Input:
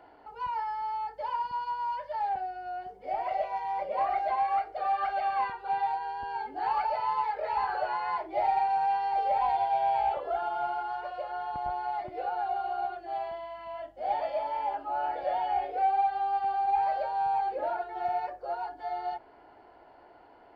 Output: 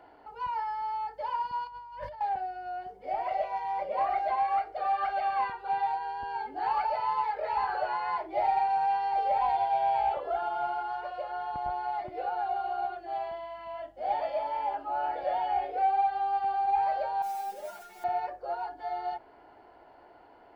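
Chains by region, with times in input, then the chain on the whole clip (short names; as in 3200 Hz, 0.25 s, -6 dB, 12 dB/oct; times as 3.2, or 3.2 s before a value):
1.67–2.21 tone controls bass +12 dB, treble 0 dB + negative-ratio compressor -43 dBFS
17.22–18.04 zero-crossing step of -40 dBFS + modulation noise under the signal 17 dB + resonator 200 Hz, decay 0.15 s, mix 100%
whole clip: dry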